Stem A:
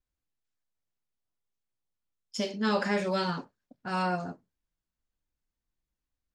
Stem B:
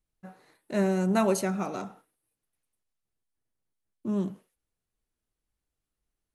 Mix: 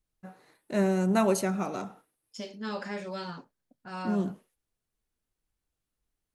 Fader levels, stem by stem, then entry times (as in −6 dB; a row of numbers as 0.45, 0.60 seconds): −8.0, 0.0 decibels; 0.00, 0.00 seconds